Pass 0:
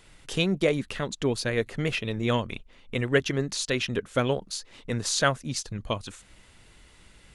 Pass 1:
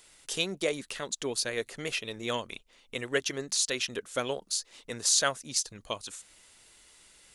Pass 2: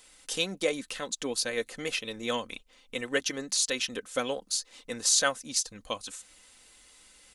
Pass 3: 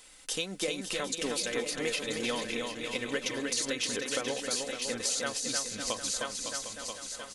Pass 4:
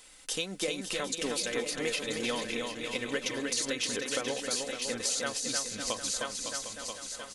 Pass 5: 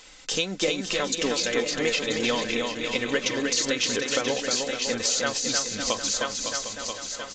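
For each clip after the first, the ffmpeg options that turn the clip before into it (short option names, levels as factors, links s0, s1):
-af "bass=f=250:g=-12,treble=f=4000:g=11,volume=0.562"
-af "aecho=1:1:3.9:0.48"
-filter_complex "[0:a]asplit=2[s0][s1];[s1]aecho=0:1:982|1964|2946:0.266|0.0772|0.0224[s2];[s0][s2]amix=inputs=2:normalize=0,acompressor=threshold=0.0251:ratio=6,asplit=2[s3][s4];[s4]aecho=0:1:310|558|756.4|915.1|1042:0.631|0.398|0.251|0.158|0.1[s5];[s3][s5]amix=inputs=2:normalize=0,volume=1.26"
-af anull
-af "volume=2.37" -ar 16000 -c:a aac -b:a 48k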